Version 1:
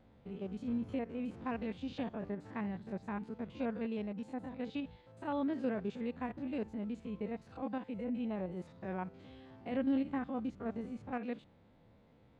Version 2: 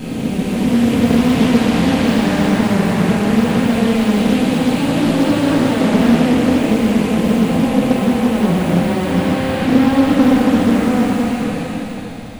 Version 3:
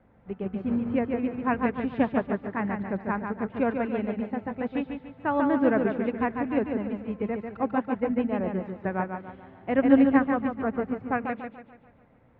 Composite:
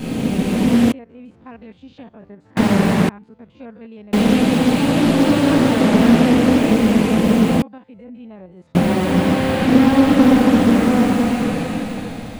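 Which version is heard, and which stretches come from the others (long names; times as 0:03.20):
2
0:00.92–0:02.57: punch in from 1
0:03.09–0:04.13: punch in from 1
0:07.62–0:08.75: punch in from 1
not used: 3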